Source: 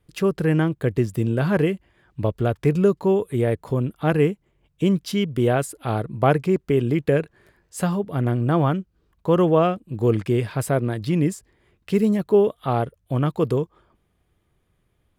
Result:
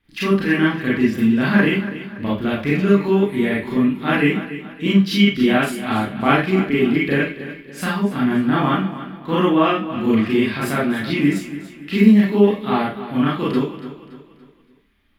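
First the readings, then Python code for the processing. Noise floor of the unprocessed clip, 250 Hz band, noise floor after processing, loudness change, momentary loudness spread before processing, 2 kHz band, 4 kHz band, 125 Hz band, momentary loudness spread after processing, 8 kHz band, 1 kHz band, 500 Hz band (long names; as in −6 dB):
−68 dBFS, +6.5 dB, −51 dBFS, +3.5 dB, 8 LU, +11.0 dB, +11.0 dB, −2.0 dB, 10 LU, −1.0 dB, +4.0 dB, 0.0 dB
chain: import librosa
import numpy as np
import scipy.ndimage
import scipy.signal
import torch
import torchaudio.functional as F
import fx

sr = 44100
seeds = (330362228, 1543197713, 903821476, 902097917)

p1 = fx.graphic_eq(x, sr, hz=(125, 250, 500, 2000, 4000, 8000), db=(-10, 8, -11, 8, 6, -10))
p2 = p1 + fx.echo_feedback(p1, sr, ms=285, feedback_pct=42, wet_db=-13.5, dry=0)
p3 = fx.rev_schroeder(p2, sr, rt60_s=0.31, comb_ms=28, drr_db=-7.0)
y = p3 * librosa.db_to_amplitude(-2.5)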